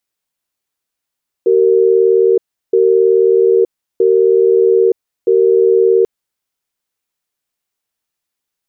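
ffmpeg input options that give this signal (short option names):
-f lavfi -i "aevalsrc='0.316*(sin(2*PI*381*t)+sin(2*PI*460*t))*clip(min(mod(t,1.27),0.92-mod(t,1.27))/0.005,0,1)':d=4.59:s=44100"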